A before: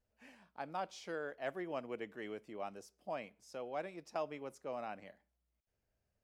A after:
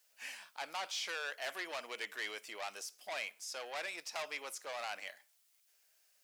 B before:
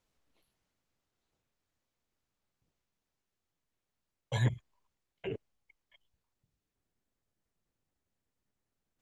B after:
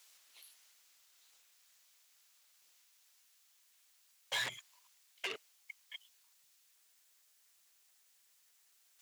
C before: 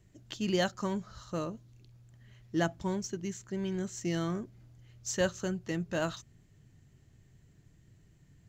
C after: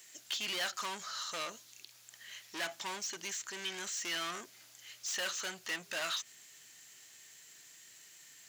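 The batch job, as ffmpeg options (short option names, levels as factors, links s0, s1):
-filter_complex "[0:a]asplit=2[s0][s1];[s1]highpass=f=720:p=1,volume=31.6,asoftclip=type=tanh:threshold=0.15[s2];[s0][s2]amix=inputs=2:normalize=0,lowpass=f=5100:p=1,volume=0.501,acrossover=split=3800[s3][s4];[s4]acompressor=threshold=0.00562:ratio=4:attack=1:release=60[s5];[s3][s5]amix=inputs=2:normalize=0,aderivative,volume=1.41"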